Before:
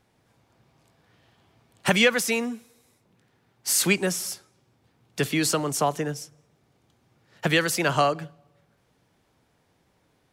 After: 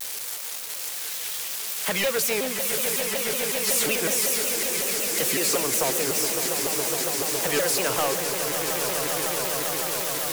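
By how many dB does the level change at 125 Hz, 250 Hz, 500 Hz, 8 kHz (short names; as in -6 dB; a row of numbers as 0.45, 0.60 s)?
-7.0, -4.0, +2.0, +7.5 dB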